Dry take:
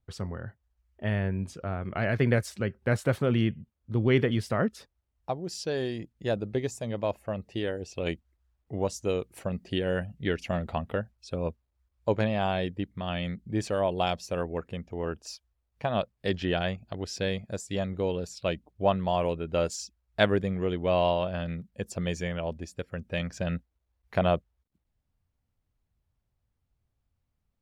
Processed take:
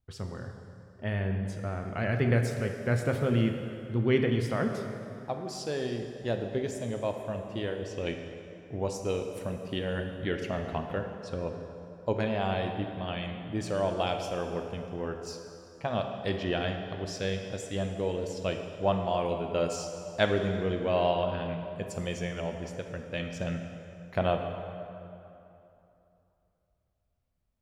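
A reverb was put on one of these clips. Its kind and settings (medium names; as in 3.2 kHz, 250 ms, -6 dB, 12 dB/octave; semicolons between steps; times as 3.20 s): plate-style reverb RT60 2.9 s, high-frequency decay 0.7×, DRR 4 dB; trim -3 dB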